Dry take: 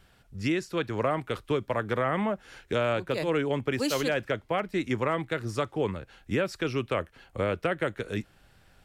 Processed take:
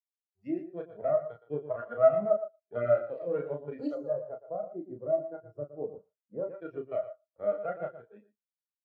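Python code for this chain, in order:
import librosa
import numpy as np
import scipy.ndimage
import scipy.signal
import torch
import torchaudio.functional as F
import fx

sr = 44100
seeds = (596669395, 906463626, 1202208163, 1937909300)

y = fx.notch(x, sr, hz=3700.0, q=19.0)
y = fx.small_body(y, sr, hz=(640.0, 1400.0), ring_ms=55, db=10)
y = fx.cheby_harmonics(y, sr, harmonics=(4, 7), levels_db=(-11, -42), full_scale_db=-11.5)
y = fx.quant_dither(y, sr, seeds[0], bits=6, dither='none')
y = scipy.signal.sosfilt(scipy.signal.butter(2, 46.0, 'highpass', fs=sr, output='sos'), y)
y = fx.low_shelf(y, sr, hz=240.0, db=-5.0)
y = fx.doubler(y, sr, ms=34.0, db=-3)
y = fx.echo_feedback(y, sr, ms=116, feedback_pct=24, wet_db=-5.0)
y = fx.noise_reduce_blind(y, sr, reduce_db=7)
y = fx.peak_eq(y, sr, hz=2700.0, db=-13.5, octaves=1.3, at=(3.94, 6.49), fade=0.02)
y = fx.spectral_expand(y, sr, expansion=2.5)
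y = y * librosa.db_to_amplitude(-3.5)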